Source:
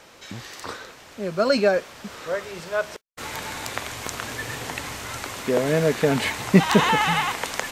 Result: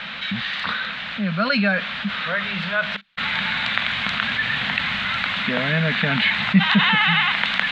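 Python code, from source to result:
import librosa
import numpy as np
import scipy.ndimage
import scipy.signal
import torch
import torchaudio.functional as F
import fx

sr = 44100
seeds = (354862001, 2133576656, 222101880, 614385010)

y = fx.curve_eq(x, sr, hz=(120.0, 200.0, 350.0, 660.0, 1000.0, 1500.0, 3800.0, 5500.0, 12000.0), db=(0, 15, -14, 1, 3, 13, 14, -12, -29))
y = fx.env_flatten(y, sr, amount_pct=50)
y = F.gain(torch.from_numpy(y), -13.5).numpy()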